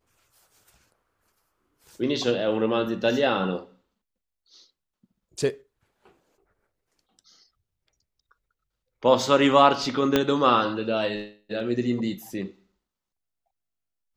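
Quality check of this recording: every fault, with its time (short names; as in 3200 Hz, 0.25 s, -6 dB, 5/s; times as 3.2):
10.16 pop -6 dBFS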